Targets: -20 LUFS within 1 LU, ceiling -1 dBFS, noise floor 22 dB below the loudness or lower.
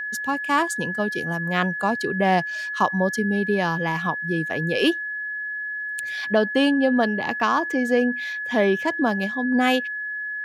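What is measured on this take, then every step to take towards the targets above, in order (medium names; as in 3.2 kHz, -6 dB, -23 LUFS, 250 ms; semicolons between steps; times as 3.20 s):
steady tone 1.7 kHz; tone level -27 dBFS; loudness -23.0 LUFS; peak level -6.5 dBFS; loudness target -20.0 LUFS
-> band-stop 1.7 kHz, Q 30; trim +3 dB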